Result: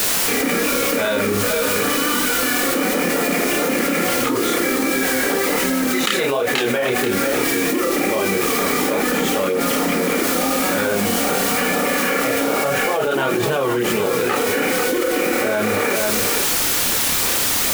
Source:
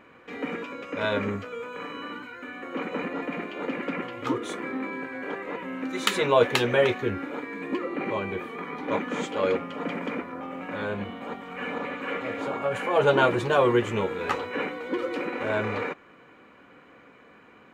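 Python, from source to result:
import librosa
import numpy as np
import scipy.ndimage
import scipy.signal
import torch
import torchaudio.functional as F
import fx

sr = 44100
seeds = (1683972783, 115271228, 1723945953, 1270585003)

p1 = scipy.signal.sosfilt(scipy.signal.butter(2, 150.0, 'highpass', fs=sr, output='sos'), x)
p2 = fx.notch(p1, sr, hz=1000.0, q=5.6)
p3 = fx.dmg_noise_colour(p2, sr, seeds[0], colour='white', level_db=-40.0)
p4 = fx.chorus_voices(p3, sr, voices=2, hz=1.3, base_ms=30, depth_ms=3.0, mix_pct=45)
p5 = p4 + fx.echo_single(p4, sr, ms=486, db=-13.5, dry=0)
y = fx.env_flatten(p5, sr, amount_pct=100)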